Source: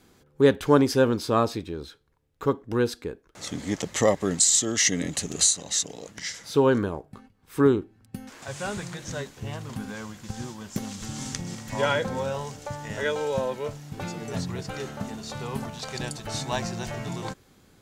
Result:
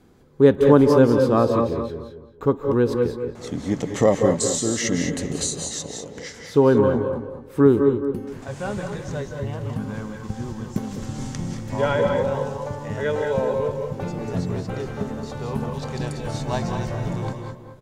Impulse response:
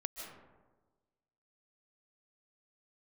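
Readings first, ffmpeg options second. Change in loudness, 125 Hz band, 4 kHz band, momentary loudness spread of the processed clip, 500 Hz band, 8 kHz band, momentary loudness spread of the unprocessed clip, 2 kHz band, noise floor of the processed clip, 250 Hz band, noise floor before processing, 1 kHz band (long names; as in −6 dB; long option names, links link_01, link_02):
+4.0 dB, +6.5 dB, −4.0 dB, 15 LU, +6.5 dB, −5.0 dB, 16 LU, 0.0 dB, −42 dBFS, +6.0 dB, −60 dBFS, +3.0 dB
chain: -filter_complex "[0:a]tiltshelf=frequency=1400:gain=6,asplit=2[link_01][link_02];[link_02]adelay=218,lowpass=frequency=1300:poles=1,volume=-6dB,asplit=2[link_03][link_04];[link_04]adelay=218,lowpass=frequency=1300:poles=1,volume=0.31,asplit=2[link_05][link_06];[link_06]adelay=218,lowpass=frequency=1300:poles=1,volume=0.31,asplit=2[link_07][link_08];[link_08]adelay=218,lowpass=frequency=1300:poles=1,volume=0.31[link_09];[link_01][link_03][link_05][link_07][link_09]amix=inputs=5:normalize=0[link_10];[1:a]atrim=start_sample=2205,afade=type=out:start_time=0.23:duration=0.01,atrim=end_sample=10584,asetrate=35721,aresample=44100[link_11];[link_10][link_11]afir=irnorm=-1:irlink=0,volume=1dB"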